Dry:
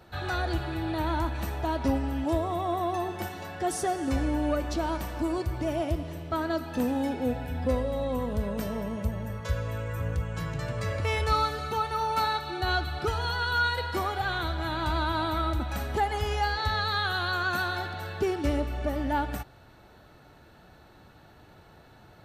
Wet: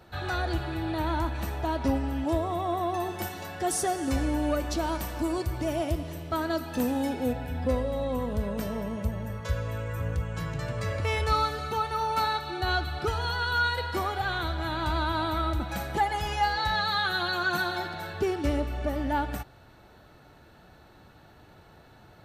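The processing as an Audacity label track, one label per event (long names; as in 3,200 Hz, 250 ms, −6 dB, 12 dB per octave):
3.000000	7.330000	high-shelf EQ 4,800 Hz +7 dB
15.620000	18.140000	comb filter 5.9 ms, depth 62%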